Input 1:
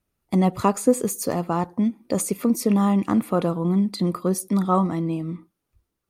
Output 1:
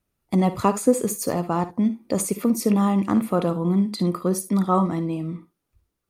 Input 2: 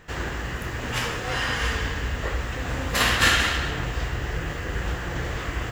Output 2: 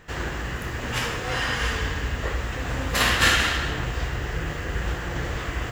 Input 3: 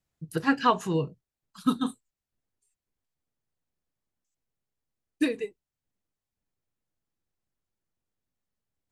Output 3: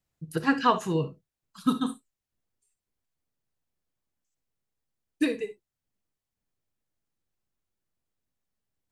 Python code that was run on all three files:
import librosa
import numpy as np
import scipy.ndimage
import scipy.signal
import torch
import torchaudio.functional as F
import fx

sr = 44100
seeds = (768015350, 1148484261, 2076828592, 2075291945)

y = fx.room_early_taps(x, sr, ms=(57, 71), db=(-14.5, -17.5))